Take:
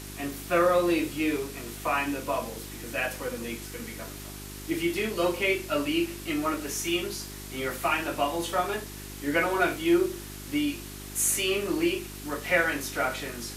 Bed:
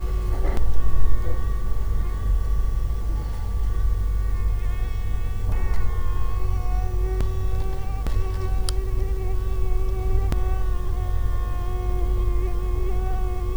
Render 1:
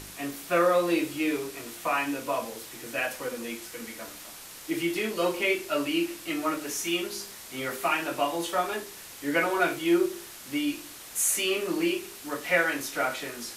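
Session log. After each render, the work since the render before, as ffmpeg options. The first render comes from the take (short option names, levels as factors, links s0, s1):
-af "bandreject=f=50:t=h:w=4,bandreject=f=100:t=h:w=4,bandreject=f=150:t=h:w=4,bandreject=f=200:t=h:w=4,bandreject=f=250:t=h:w=4,bandreject=f=300:t=h:w=4,bandreject=f=350:t=h:w=4,bandreject=f=400:t=h:w=4"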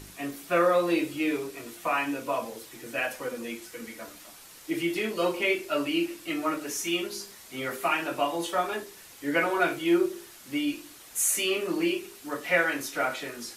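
-af "afftdn=nr=6:nf=-45"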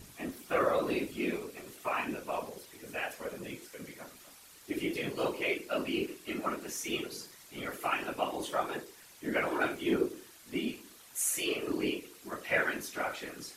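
-af "afftfilt=real='hypot(re,im)*cos(2*PI*random(0))':imag='hypot(re,im)*sin(2*PI*random(1))':win_size=512:overlap=0.75"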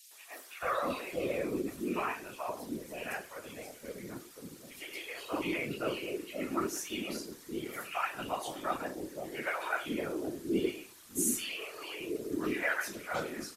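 -filter_complex "[0:a]acrossover=split=560|2600[s0][s1][s2];[s1]adelay=110[s3];[s0]adelay=630[s4];[s4][s3][s2]amix=inputs=3:normalize=0"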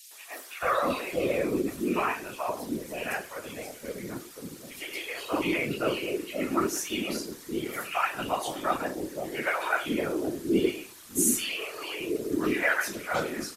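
-af "volume=2.11"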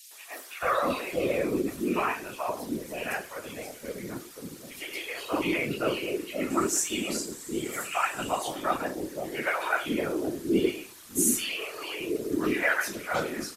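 -filter_complex "[0:a]asettb=1/sr,asplit=3[s0][s1][s2];[s0]atrim=end=6.504[s3];[s1]atrim=start=6.5:end=8.43,asetpts=PTS-STARTPTS,afade=t=in:d=0.004:c=qsin,afade=t=out:st=1.926:d=0.004:c=qsin,equalizer=f=7700:t=o:w=0.37:g=13[s4];[s2]atrim=start=8.426[s5];[s3][s4]acrossfade=d=0.004:c1=hsin:c2=qsin[s6];[s6][s5]acrossfade=d=0.004:c1=qsin:c2=hsin"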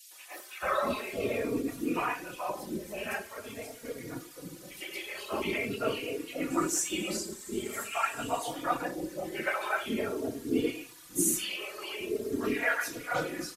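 -filter_complex "[0:a]asplit=2[s0][s1];[s1]adelay=3.6,afreqshift=0.45[s2];[s0][s2]amix=inputs=2:normalize=1"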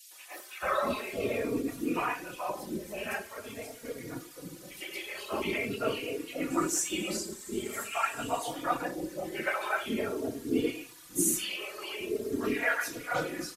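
-af anull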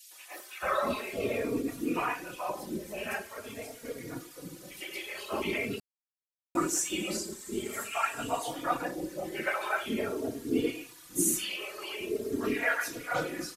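-filter_complex "[0:a]asplit=3[s0][s1][s2];[s0]atrim=end=5.8,asetpts=PTS-STARTPTS,afade=t=out:st=5.796:d=0.004:c=hsin[s3];[s1]atrim=start=5.8:end=6.55,asetpts=PTS-STARTPTS,volume=0[s4];[s2]atrim=start=6.55,asetpts=PTS-STARTPTS,afade=t=in:d=0.004:c=hsin[s5];[s3][s4][s5]concat=n=3:v=0:a=1"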